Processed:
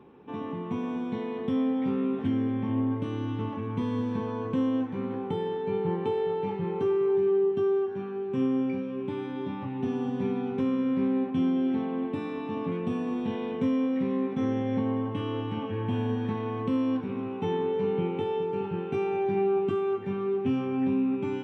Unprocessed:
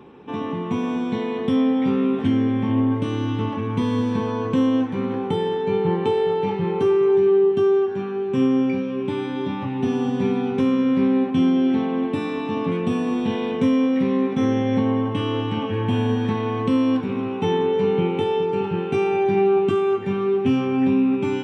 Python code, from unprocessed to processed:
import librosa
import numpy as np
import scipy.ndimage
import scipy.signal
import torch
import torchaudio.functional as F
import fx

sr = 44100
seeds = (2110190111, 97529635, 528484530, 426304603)

y = fx.high_shelf(x, sr, hz=3500.0, db=-9.5)
y = y * 10.0 ** (-7.5 / 20.0)